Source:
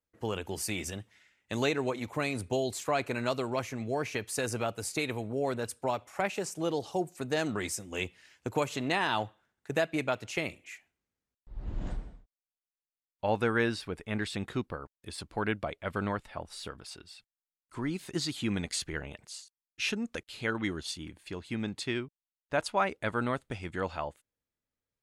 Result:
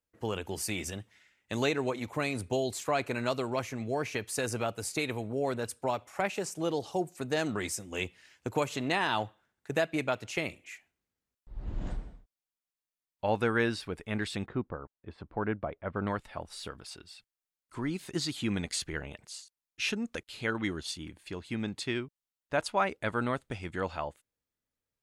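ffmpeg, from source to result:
-filter_complex "[0:a]asettb=1/sr,asplit=3[a][b][c];[a]atrim=end=14.464[d];[b]atrim=start=14.46:end=16.07,asetpts=PTS-STARTPTS,afade=t=in:d=0.004:c=qsin,afade=t=out:st=1.606:d=0.004:c=qsin,lowpass=1.4k[e];[c]atrim=start=16.066[f];[d][e]acrossfade=d=0.004:c1=hsin:c2=qsin[g];[g][f]acrossfade=d=0.004:c1=qsin:c2=hsin"

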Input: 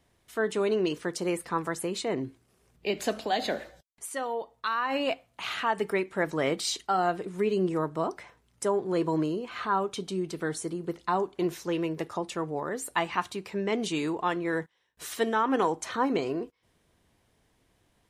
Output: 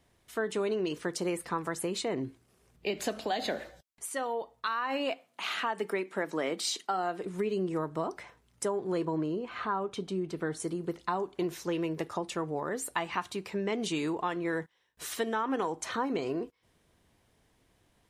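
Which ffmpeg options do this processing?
-filter_complex "[0:a]asettb=1/sr,asplit=3[a][b][c];[a]atrim=end=4.674[d];[b]atrim=start=4.67:end=7.24,asetpts=PTS-STARTPTS,afade=t=in:d=0.004:c=qsin,afade=t=out:st=2.566:d=0.004:c=qsin,highpass=f=190:w=0.5412,highpass=f=190:w=1.3066[e];[c]atrim=start=7.236[f];[d][e]acrossfade=d=0.004:c1=hsin:c2=qsin[g];[g][f]acrossfade=d=0.004:c1=qsin:c2=hsin,asettb=1/sr,asplit=3[h][i][j];[h]atrim=end=9.054[k];[i]atrim=start=9.05:end=10.6,asetpts=PTS-STARTPTS,afade=t=in:d=0.004:c=qsin,afade=t=out:st=1.546:d=0.004:c=qsin,highshelf=f=3.5k:g=-10[l];[j]atrim=start=10.596[m];[k][l]acrossfade=d=0.004:c1=hsin:c2=qsin[n];[n][m]acrossfade=d=0.004:c1=qsin:c2=hsin,acompressor=threshold=-28dB:ratio=4"

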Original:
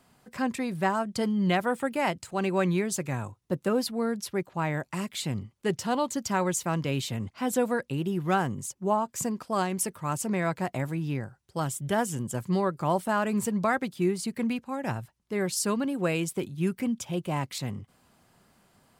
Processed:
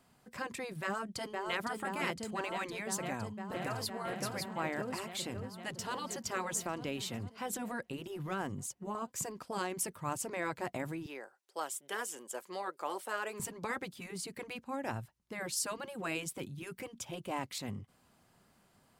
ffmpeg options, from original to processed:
-filter_complex "[0:a]asplit=2[a][b];[b]afade=t=in:st=0.82:d=0.01,afade=t=out:st=1.62:d=0.01,aecho=0:1:510|1020|1530|2040|2550|3060|3570|4080|4590|5100|5610|6120:0.421697|0.337357|0.269886|0.215909|0.172727|0.138182|0.110545|0.0884362|0.0707489|0.0565991|0.0452793|0.0362235[c];[a][c]amix=inputs=2:normalize=0,asplit=2[d][e];[e]afade=t=in:st=2.98:d=0.01,afade=t=out:st=3.95:d=0.01,aecho=0:1:560|1120|1680|2240|2800|3360|3920:0.668344|0.334172|0.167086|0.083543|0.0417715|0.0208857|0.0104429[f];[d][f]amix=inputs=2:normalize=0,asplit=2[g][h];[h]afade=t=in:st=5.34:d=0.01,afade=t=out:st=5.96:d=0.01,aecho=0:1:450|900|1350|1800|2250|2700|3150:0.141254|0.0918149|0.0596797|0.0387918|0.0252147|0.0163895|0.0106532[i];[g][i]amix=inputs=2:normalize=0,asettb=1/sr,asplit=3[j][k][l];[j]atrim=end=6.594[m];[k]atrim=start=6.59:end=8.95,asetpts=PTS-STARTPTS,afade=t=in:d=0.004:c=qsin,afade=t=out:st=2.356:d=0.004:c=qsin,acompressor=threshold=-25dB:ratio=6:attack=3.2:release=140:knee=1:detection=peak[n];[l]atrim=start=8.946[o];[m][n]acrossfade=d=0.004:c1=hsin:c2=qsin[p];[p][o]acrossfade=d=0.004:c1=qsin:c2=hsin,asettb=1/sr,asplit=3[q][r][s];[q]atrim=end=11.064[t];[r]atrim=start=11.06:end=13.4,asetpts=PTS-STARTPTS,afade=t=in:d=0.004:c=qsin,afade=t=out:st=2.336:d=0.004:c=qsin,highpass=f=400:w=0.5412,highpass=f=400:w=1.3066[u];[s]atrim=start=13.396[v];[t][u]acrossfade=d=0.004:c1=hsin:c2=qsin[w];[w][v]acrossfade=d=0.004:c1=qsin:c2=hsin,afftfilt=real='re*lt(hypot(re,im),0.251)':imag='im*lt(hypot(re,im),0.251)':win_size=1024:overlap=0.75,volume=-5dB"

